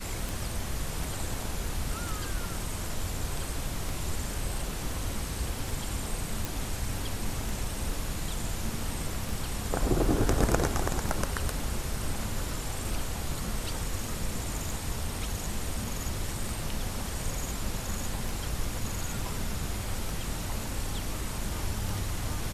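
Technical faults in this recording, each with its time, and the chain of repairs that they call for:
tick 33 1/3 rpm
6.45 pop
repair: de-click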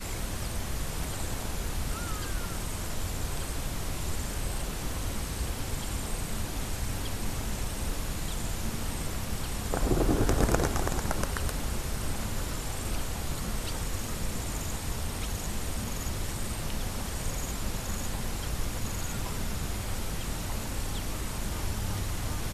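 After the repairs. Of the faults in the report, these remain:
none

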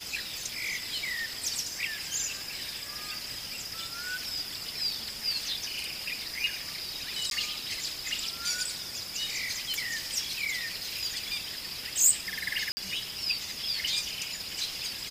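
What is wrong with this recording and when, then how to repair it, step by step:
7.3–7.31 gap 12 ms
12.72–12.77 gap 50 ms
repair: interpolate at 7.3, 12 ms; interpolate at 12.72, 50 ms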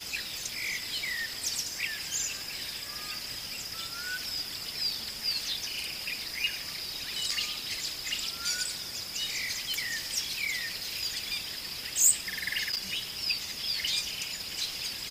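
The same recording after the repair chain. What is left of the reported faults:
none

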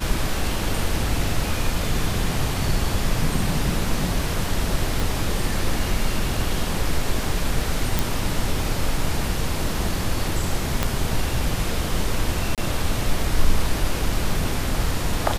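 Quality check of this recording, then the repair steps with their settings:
5 pop
7.99 pop
10.83 pop -5 dBFS
12.55–12.58 gap 27 ms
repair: de-click; interpolate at 12.55, 27 ms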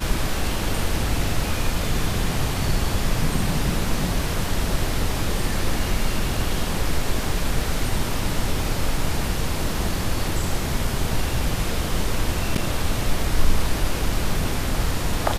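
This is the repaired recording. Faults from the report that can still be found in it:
5 pop
10.83 pop

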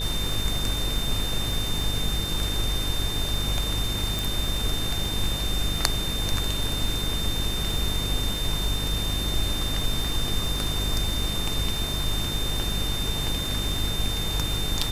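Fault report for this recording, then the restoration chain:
buzz 50 Hz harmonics 9 -31 dBFS
crackle 46/s -30 dBFS
tone 3600 Hz -30 dBFS
4.19 pop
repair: de-click; de-hum 50 Hz, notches 9; notch 3600 Hz, Q 30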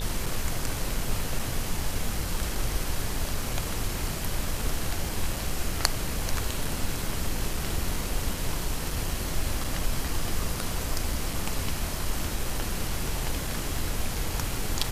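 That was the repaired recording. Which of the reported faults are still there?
none

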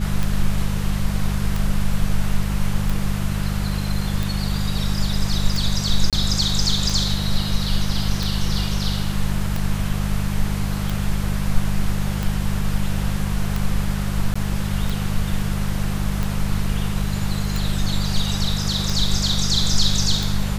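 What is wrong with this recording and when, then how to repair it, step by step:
hum 50 Hz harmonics 4 -24 dBFS
tick 45 rpm
6.1–6.13 gap 27 ms
14.34–14.36 gap 15 ms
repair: de-click; de-hum 50 Hz, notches 4; interpolate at 6.1, 27 ms; interpolate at 14.34, 15 ms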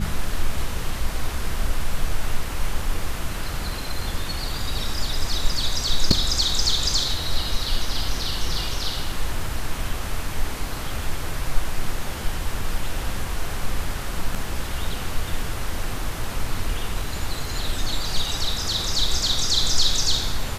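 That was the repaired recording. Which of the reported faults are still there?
none

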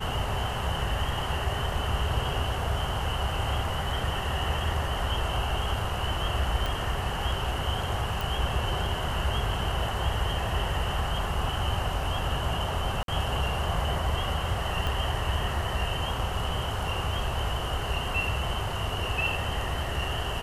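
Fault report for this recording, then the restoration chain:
6.66 pop -16 dBFS
8.21 pop
13.03–13.08 gap 52 ms
14.87 pop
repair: de-click; interpolate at 13.03, 52 ms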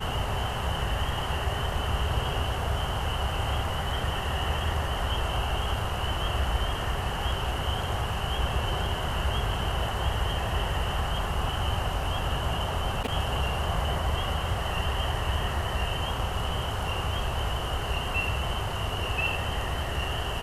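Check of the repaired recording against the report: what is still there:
6.66 pop
8.21 pop
14.87 pop

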